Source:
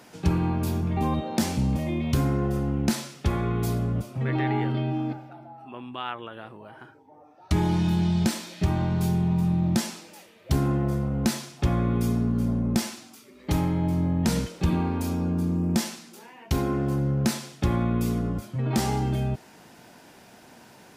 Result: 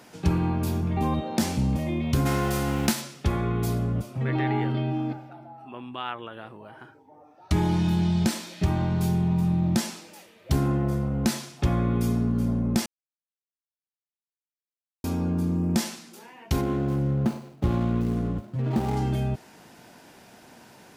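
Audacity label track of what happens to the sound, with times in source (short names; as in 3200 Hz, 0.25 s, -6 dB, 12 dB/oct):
2.250000	3.000000	spectral whitening exponent 0.6
12.860000	15.040000	mute
16.610000	18.970000	median filter over 25 samples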